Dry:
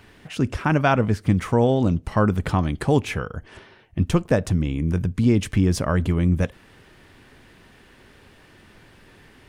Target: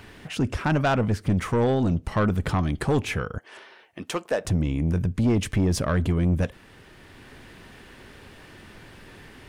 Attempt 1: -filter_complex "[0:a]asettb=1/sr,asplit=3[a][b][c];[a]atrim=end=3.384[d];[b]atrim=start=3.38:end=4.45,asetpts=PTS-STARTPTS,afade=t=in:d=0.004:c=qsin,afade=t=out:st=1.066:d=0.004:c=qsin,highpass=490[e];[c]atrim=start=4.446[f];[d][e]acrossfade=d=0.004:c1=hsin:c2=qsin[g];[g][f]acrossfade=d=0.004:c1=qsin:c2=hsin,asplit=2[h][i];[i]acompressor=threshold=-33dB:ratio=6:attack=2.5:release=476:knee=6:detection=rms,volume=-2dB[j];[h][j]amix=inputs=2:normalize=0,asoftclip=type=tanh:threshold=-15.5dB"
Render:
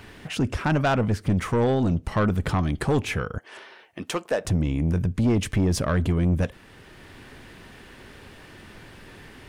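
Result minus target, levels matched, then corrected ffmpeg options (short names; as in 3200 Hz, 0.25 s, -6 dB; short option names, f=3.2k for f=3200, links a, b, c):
compressor: peak gain reduction -9.5 dB
-filter_complex "[0:a]asettb=1/sr,asplit=3[a][b][c];[a]atrim=end=3.384[d];[b]atrim=start=3.38:end=4.45,asetpts=PTS-STARTPTS,afade=t=in:d=0.004:c=qsin,afade=t=out:st=1.066:d=0.004:c=qsin,highpass=490[e];[c]atrim=start=4.446[f];[d][e]acrossfade=d=0.004:c1=hsin:c2=qsin[g];[g][f]acrossfade=d=0.004:c1=qsin:c2=hsin,asplit=2[h][i];[i]acompressor=threshold=-44.5dB:ratio=6:attack=2.5:release=476:knee=6:detection=rms,volume=-2dB[j];[h][j]amix=inputs=2:normalize=0,asoftclip=type=tanh:threshold=-15.5dB"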